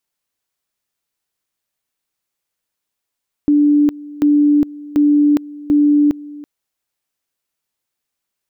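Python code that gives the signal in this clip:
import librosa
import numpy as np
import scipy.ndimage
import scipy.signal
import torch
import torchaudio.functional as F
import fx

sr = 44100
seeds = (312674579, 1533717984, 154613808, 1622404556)

y = fx.two_level_tone(sr, hz=293.0, level_db=-8.5, drop_db=20.5, high_s=0.41, low_s=0.33, rounds=4)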